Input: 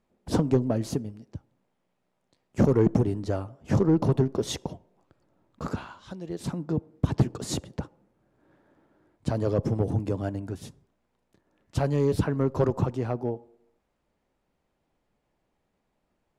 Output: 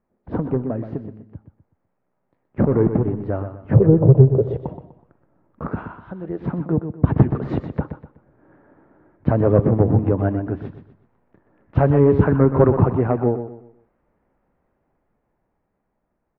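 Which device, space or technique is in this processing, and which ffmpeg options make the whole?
action camera in a waterproof case: -filter_complex "[0:a]asplit=3[a][b][c];[a]afade=t=out:st=3.74:d=0.02[d];[b]equalizer=f=125:t=o:w=1:g=11,equalizer=f=250:t=o:w=1:g=-8,equalizer=f=500:t=o:w=1:g=11,equalizer=f=1k:t=o:w=1:g=-8,equalizer=f=2k:t=o:w=1:g=-11,equalizer=f=4k:t=o:w=1:g=-8,equalizer=f=8k:t=o:w=1:g=-5,afade=t=in:st=3.74:d=0.02,afade=t=out:st=4.61:d=0.02[e];[c]afade=t=in:st=4.61:d=0.02[f];[d][e][f]amix=inputs=3:normalize=0,lowpass=f=1.9k:w=0.5412,lowpass=f=1.9k:w=1.3066,aecho=1:1:124|248|372|496:0.335|0.111|0.0365|0.012,dynaudnorm=f=230:g=21:m=11.5dB" -ar 22050 -c:a aac -b:a 48k

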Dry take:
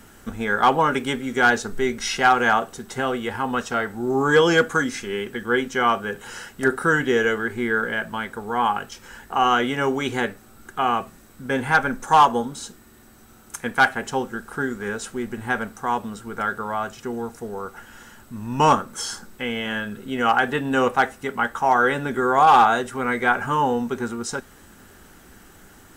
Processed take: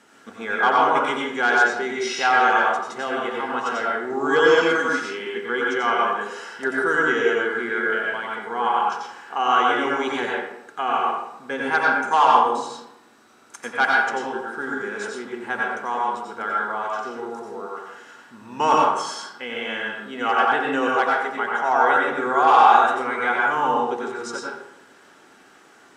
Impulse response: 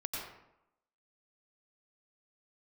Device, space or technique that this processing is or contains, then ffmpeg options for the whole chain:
supermarket ceiling speaker: -filter_complex "[0:a]highpass=330,lowpass=6.6k[a];[1:a]atrim=start_sample=2205[b];[a][b]afir=irnorm=-1:irlink=0,volume=-1dB"

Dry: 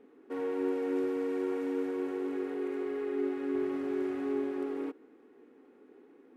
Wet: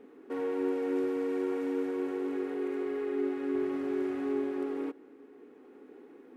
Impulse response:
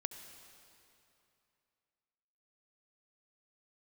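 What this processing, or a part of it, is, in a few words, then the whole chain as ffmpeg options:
ducked reverb: -filter_complex "[0:a]asplit=3[a][b][c];[1:a]atrim=start_sample=2205[d];[b][d]afir=irnorm=-1:irlink=0[e];[c]apad=whole_len=280897[f];[e][f]sidechaincompress=threshold=-46dB:ratio=8:attack=16:release=936,volume=-0.5dB[g];[a][g]amix=inputs=2:normalize=0"

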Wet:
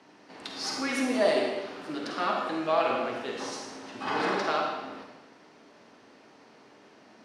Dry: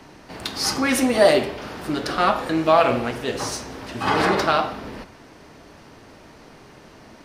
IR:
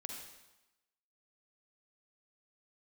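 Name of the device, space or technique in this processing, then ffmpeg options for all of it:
supermarket ceiling speaker: -filter_complex "[0:a]highpass=220,lowpass=7k[a];[1:a]atrim=start_sample=2205[b];[a][b]afir=irnorm=-1:irlink=0,volume=-5.5dB"

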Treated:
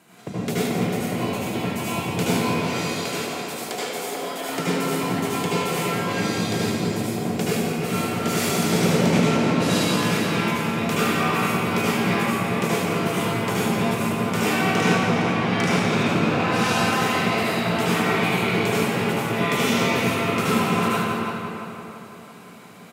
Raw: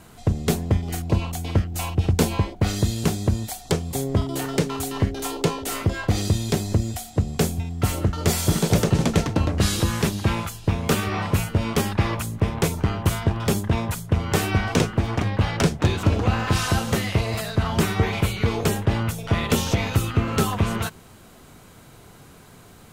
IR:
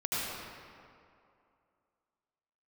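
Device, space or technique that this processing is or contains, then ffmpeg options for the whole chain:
PA in a hall: -filter_complex "[0:a]asettb=1/sr,asplit=3[a][b][c];[a]atrim=end=2.514[d];[b]atrim=start=2.51:end=4.49,asetpts=PTS-STARTPTS,afade=t=in:d=0.004:c=qsin,afade=t=out:st=1.976:d=0.004:c=qsin,highpass=510[e];[c]atrim=start=4.486[f];[d][e]acrossfade=d=0.004:c1=hsin:c2=qsin[g];[g][f]acrossfade=d=0.004:c1=qsin:c2=hsin,highpass=f=160:w=0.5412,highpass=f=160:w=1.3066,equalizer=f=2.3k:t=o:w=0.78:g=4.5,aecho=1:1:171:0.355,asplit=2[h][i];[i]adelay=338,lowpass=f=3.5k:p=1,volume=-7.5dB,asplit=2[j][k];[k]adelay=338,lowpass=f=3.5k:p=1,volume=0.5,asplit=2[l][m];[m]adelay=338,lowpass=f=3.5k:p=1,volume=0.5,asplit=2[n][o];[o]adelay=338,lowpass=f=3.5k:p=1,volume=0.5,asplit=2[p][q];[q]adelay=338,lowpass=f=3.5k:p=1,volume=0.5,asplit=2[r][s];[s]adelay=338,lowpass=f=3.5k:p=1,volume=0.5[t];[h][j][l][n][p][r][t]amix=inputs=7:normalize=0[u];[1:a]atrim=start_sample=2205[v];[u][v]afir=irnorm=-1:irlink=0,volume=-5.5dB"

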